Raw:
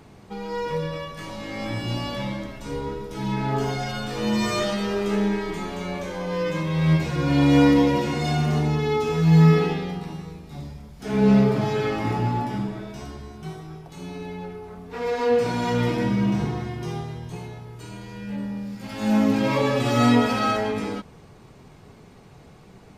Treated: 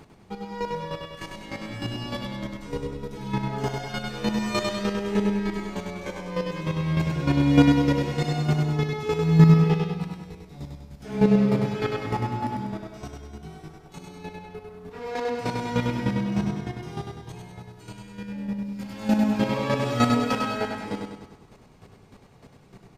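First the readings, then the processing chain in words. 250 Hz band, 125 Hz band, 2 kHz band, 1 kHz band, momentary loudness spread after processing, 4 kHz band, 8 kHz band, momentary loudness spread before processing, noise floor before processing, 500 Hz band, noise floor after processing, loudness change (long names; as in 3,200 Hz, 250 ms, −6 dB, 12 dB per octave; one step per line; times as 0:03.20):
−2.0 dB, −1.0 dB, −3.0 dB, −3.0 dB, 21 LU, −3.0 dB, can't be measured, 19 LU, −48 dBFS, −4.0 dB, −52 dBFS, −2.0 dB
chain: square-wave tremolo 3.3 Hz, depth 65%, duty 15%
repeating echo 99 ms, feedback 51%, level −4 dB
level +1 dB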